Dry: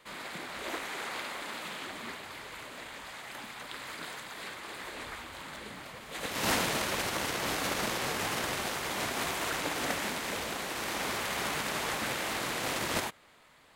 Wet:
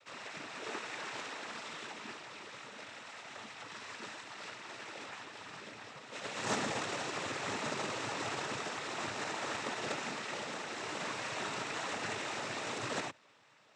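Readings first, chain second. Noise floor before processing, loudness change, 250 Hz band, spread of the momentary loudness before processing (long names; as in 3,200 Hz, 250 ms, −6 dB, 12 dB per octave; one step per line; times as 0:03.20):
−52 dBFS, −5.5 dB, −5.0 dB, 12 LU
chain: stylus tracing distortion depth 0.38 ms
parametric band 180 Hz −4 dB 0.43 octaves
cochlear-implant simulation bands 12
level −3.5 dB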